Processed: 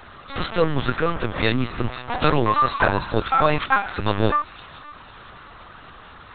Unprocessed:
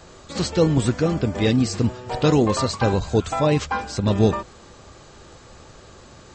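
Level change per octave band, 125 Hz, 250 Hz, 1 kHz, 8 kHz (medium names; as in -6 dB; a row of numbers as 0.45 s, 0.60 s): -5.0 dB, -5.5 dB, +6.0 dB, under -40 dB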